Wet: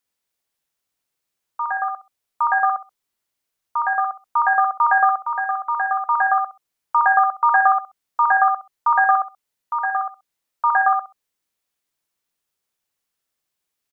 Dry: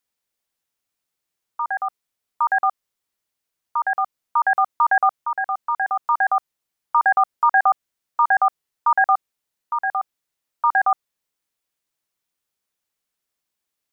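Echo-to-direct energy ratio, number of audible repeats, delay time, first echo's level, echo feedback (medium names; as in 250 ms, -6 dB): -4.5 dB, 3, 65 ms, -4.5 dB, 18%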